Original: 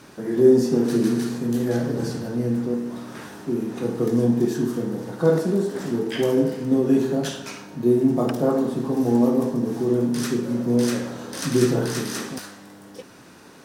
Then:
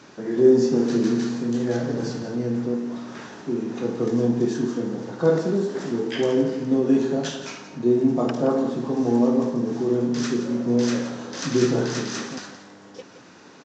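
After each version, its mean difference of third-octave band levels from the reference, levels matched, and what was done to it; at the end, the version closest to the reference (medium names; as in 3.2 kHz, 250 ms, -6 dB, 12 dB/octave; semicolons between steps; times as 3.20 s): 3.0 dB: high-pass 150 Hz 6 dB/octave; delay 172 ms -12.5 dB; resampled via 16 kHz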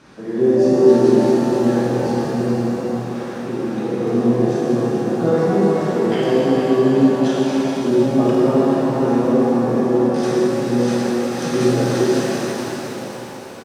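6.0 dB: distance through air 71 m; on a send: delay 435 ms -8.5 dB; on the sum: pitch-shifted reverb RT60 3.6 s, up +7 st, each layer -8 dB, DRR -6 dB; trim -2 dB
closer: first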